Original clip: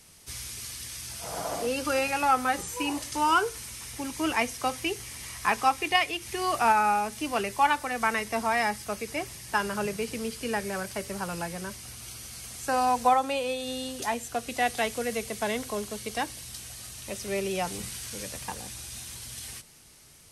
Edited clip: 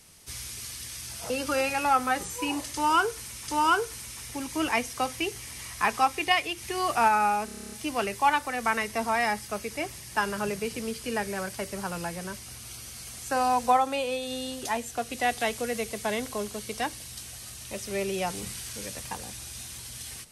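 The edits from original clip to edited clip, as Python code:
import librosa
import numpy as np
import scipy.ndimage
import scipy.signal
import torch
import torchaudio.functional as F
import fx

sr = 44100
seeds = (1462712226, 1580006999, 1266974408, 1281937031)

y = fx.edit(x, sr, fx.cut(start_s=1.3, length_s=0.38),
    fx.repeat(start_s=3.12, length_s=0.74, count=2),
    fx.stutter(start_s=7.09, slice_s=0.03, count=10), tone=tone)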